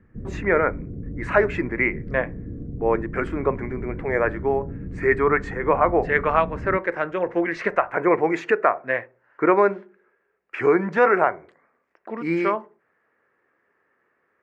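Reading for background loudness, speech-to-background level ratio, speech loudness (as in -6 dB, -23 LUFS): -35.0 LUFS, 12.5 dB, -22.5 LUFS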